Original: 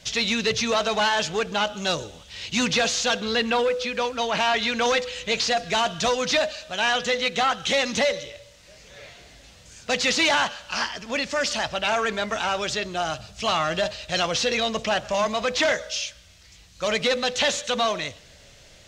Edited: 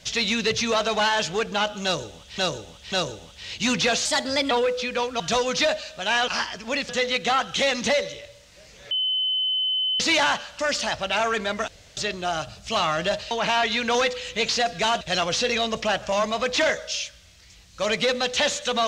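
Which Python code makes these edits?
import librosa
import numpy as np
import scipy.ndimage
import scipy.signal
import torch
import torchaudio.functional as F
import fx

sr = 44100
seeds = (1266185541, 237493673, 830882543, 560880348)

y = fx.edit(x, sr, fx.repeat(start_s=1.84, length_s=0.54, count=3),
    fx.speed_span(start_s=2.97, length_s=0.56, speed=1.22),
    fx.move(start_s=4.22, length_s=1.7, to_s=14.03),
    fx.bleep(start_s=9.02, length_s=1.09, hz=3040.0, db=-21.0),
    fx.move(start_s=10.7, length_s=0.61, to_s=7.0),
    fx.room_tone_fill(start_s=12.4, length_s=0.29), tone=tone)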